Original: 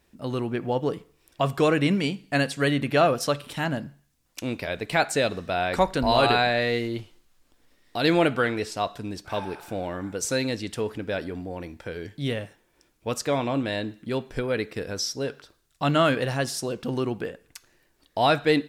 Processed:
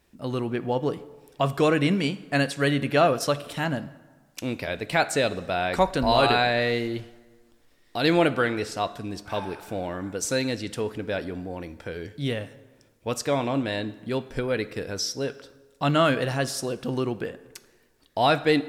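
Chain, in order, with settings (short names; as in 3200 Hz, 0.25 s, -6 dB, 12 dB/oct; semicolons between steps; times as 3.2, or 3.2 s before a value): plate-style reverb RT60 1.5 s, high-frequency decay 0.65×, DRR 16.5 dB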